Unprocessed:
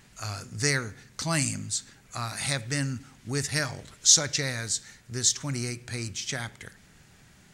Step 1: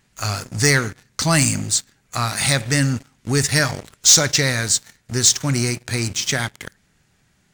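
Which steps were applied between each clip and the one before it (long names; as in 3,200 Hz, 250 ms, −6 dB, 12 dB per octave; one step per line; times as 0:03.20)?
leveller curve on the samples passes 3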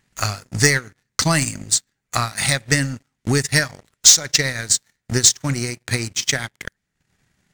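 parametric band 1,900 Hz +3.5 dB 0.27 octaves
transient designer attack +10 dB, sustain −12 dB
level −4.5 dB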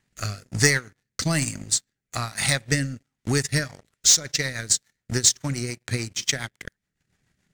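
rotating-speaker cabinet horn 1.1 Hz, later 7 Hz, at 0:03.28
level −3 dB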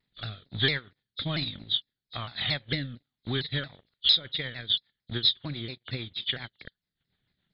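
hearing-aid frequency compression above 3,000 Hz 4 to 1
pitch modulation by a square or saw wave saw down 4.4 Hz, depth 160 cents
level −8 dB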